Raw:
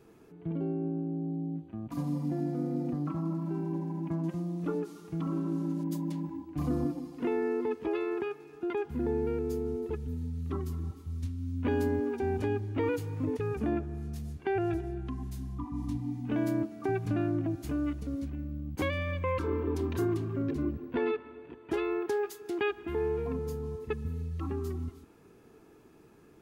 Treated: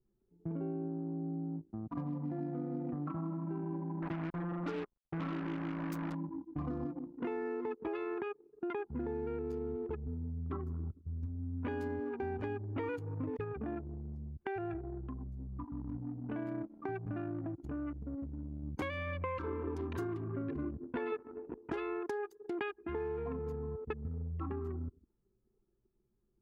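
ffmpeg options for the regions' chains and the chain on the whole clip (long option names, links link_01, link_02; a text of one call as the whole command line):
ffmpeg -i in.wav -filter_complex "[0:a]asettb=1/sr,asplit=3[link_01][link_02][link_03];[link_01]atrim=end=4.024[link_04];[link_02]atrim=start=4.02:end=6.15,asetpts=PTS-STARTPTS,afade=type=in:duration=0.004:curve=qsin,afade=type=out:start_time=2.126:duration=0.004:curve=qsin,highpass=frequency=48:poles=1,acrusher=bits=5:mix=0:aa=0.5[link_05];[link_03]atrim=start=6.146[link_06];[link_04][link_05]acrossfade=duration=0.004:curve1=hsin:curve2=qsin[link_07];[link_07][link_06]acrossfade=duration=0.004:curve1=qsin:curve2=hsin,asettb=1/sr,asplit=3[link_08][link_09][link_10];[link_08]atrim=end=13.444[link_11];[link_09]atrim=start=13.44:end=18.63,asetpts=PTS-STARTPTS,afade=type=in:duration=0.004:curve=qsin,afade=type=out:start_time=5.186:duration=0.004:curve=qsin,acompressor=threshold=-38dB:ratio=1.5:attack=3.2:release=140:knee=1:detection=peak,aeval=exprs='sgn(val(0))*max(abs(val(0))-0.00126,0)':channel_layout=same[link_12];[link_10]atrim=start=18.626[link_13];[link_11][link_12]acrossfade=duration=0.004:curve1=hsin:curve2=qsin[link_14];[link_14][link_13]acrossfade=duration=0.004:curve1=qsin:curve2=hsin,asettb=1/sr,asplit=3[link_15][link_16][link_17];[link_15]atrim=end=21.124[link_18];[link_16]atrim=start=21.12:end=21.72,asetpts=PTS-STARTPTS,afade=type=in:duration=0.004:curve=qsin,afade=type=out:start_time=0.596:duration=0.004:curve=qsin,highshelf=frequency=2400:gain=-7,acontrast=45[link_19];[link_17]atrim=start=21.716[link_20];[link_18][link_19]acrossfade=duration=0.004:curve1=hsin:curve2=qsin[link_21];[link_21][link_20]acrossfade=duration=0.004:curve1=qsin:curve2=hsin,anlmdn=0.631,equalizer=frequency=1300:width=0.64:gain=6,acompressor=threshold=-32dB:ratio=6,volume=-2.5dB" out.wav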